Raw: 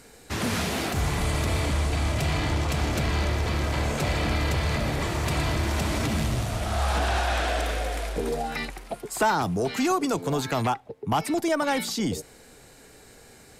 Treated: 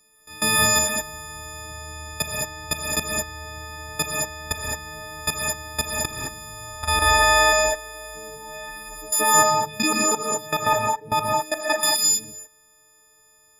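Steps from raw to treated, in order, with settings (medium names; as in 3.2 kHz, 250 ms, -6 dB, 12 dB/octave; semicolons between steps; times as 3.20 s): partials quantised in pitch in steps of 6 st; level held to a coarse grid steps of 20 dB; gated-style reverb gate 240 ms rising, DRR -2 dB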